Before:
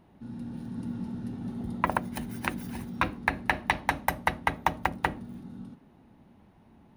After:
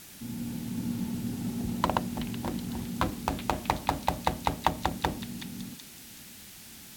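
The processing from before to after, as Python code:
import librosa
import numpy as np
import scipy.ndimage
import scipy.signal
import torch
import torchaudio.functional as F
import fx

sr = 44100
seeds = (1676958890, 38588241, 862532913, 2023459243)

y = scipy.ndimage.median_filter(x, 25, mode='constant')
y = fx.dmg_noise_band(y, sr, seeds[0], low_hz=1300.0, high_hz=17000.0, level_db=-52.0)
y = fx.echo_stepped(y, sr, ms=375, hz=3000.0, octaves=0.7, feedback_pct=70, wet_db=-4)
y = y * librosa.db_to_amplitude(2.5)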